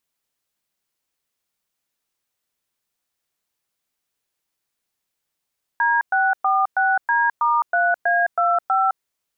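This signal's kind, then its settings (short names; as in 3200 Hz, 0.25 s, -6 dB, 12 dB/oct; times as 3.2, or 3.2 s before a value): DTMF "D646D*3A25", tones 0.211 s, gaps 0.111 s, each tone -18 dBFS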